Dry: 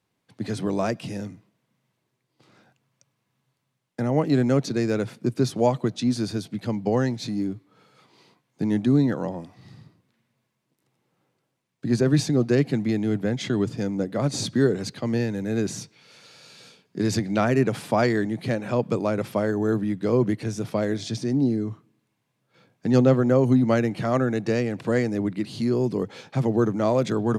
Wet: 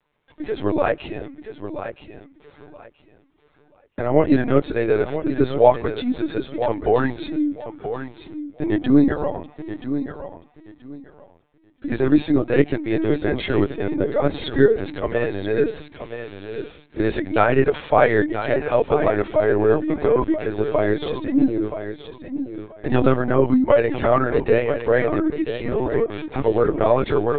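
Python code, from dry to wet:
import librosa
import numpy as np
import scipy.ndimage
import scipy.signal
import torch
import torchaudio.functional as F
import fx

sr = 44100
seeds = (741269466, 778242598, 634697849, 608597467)

y = scipy.signal.sosfilt(scipy.signal.butter(2, 310.0, 'highpass', fs=sr, output='sos'), x)
y = fx.air_absorb(y, sr, metres=130.0)
y = y + 0.85 * np.pad(y, (int(6.8 * sr / 1000.0), 0))[:len(y)]
y = fx.echo_feedback(y, sr, ms=978, feedback_pct=22, wet_db=-10.0)
y = fx.lpc_vocoder(y, sr, seeds[0], excitation='pitch_kept', order=16)
y = y * librosa.db_to_amplitude(5.5)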